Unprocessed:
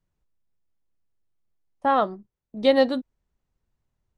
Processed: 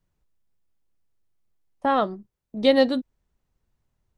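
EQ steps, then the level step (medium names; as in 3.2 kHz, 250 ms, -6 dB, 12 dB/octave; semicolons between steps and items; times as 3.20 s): dynamic bell 930 Hz, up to -5 dB, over -33 dBFS, Q 0.7; +3.0 dB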